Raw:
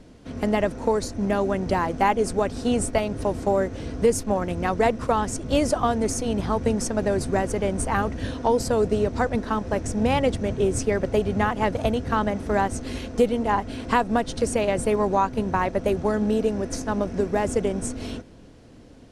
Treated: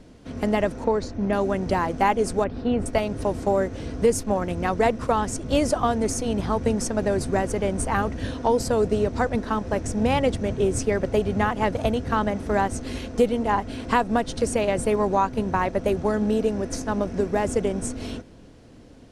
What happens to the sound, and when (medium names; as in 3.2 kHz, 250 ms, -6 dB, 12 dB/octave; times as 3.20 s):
0.84–1.33 s: distance through air 120 m
2.44–2.86 s: distance through air 330 m